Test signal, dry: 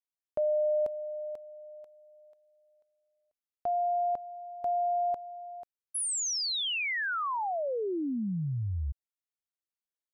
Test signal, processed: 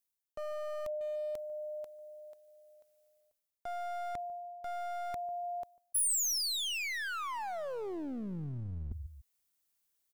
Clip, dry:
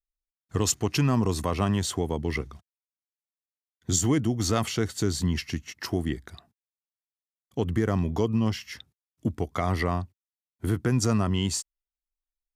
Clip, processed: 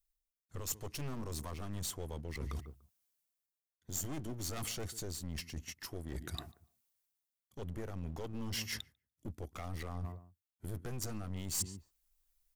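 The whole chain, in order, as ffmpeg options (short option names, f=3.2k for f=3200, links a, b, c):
-filter_complex "[0:a]asplit=2[a][b];[b]adelay=146,lowpass=f=1.1k:p=1,volume=-21dB,asplit=2[c][d];[d]adelay=146,lowpass=f=1.1k:p=1,volume=0.33[e];[c][e]amix=inputs=2:normalize=0[f];[a][f]amix=inputs=2:normalize=0,acontrast=84,lowshelf=f=96:g=6.5,aeval=exprs='clip(val(0),-1,0.0398)':c=same,areverse,acompressor=threshold=-34dB:ratio=20:attack=1.4:release=530:knee=6:detection=rms,areverse,crystalizer=i=1.5:c=0"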